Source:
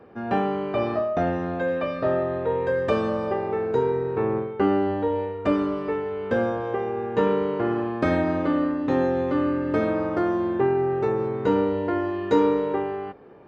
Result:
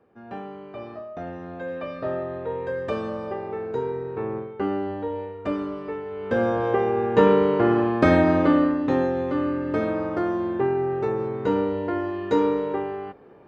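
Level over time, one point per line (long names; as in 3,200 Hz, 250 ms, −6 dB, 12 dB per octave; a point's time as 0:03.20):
0:01.04 −12.5 dB
0:01.93 −5 dB
0:06.05 −5 dB
0:06.64 +5 dB
0:08.49 +5 dB
0:09.13 −1.5 dB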